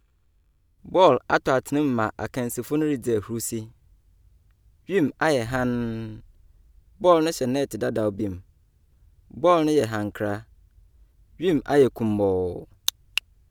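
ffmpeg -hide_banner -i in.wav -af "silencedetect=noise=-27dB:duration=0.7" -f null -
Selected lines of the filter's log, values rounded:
silence_start: 0.00
silence_end: 0.95 | silence_duration: 0.95
silence_start: 3.62
silence_end: 4.89 | silence_duration: 1.27
silence_start: 6.09
silence_end: 7.04 | silence_duration: 0.95
silence_start: 8.34
silence_end: 9.37 | silence_duration: 1.03
silence_start: 10.37
silence_end: 11.42 | silence_duration: 1.04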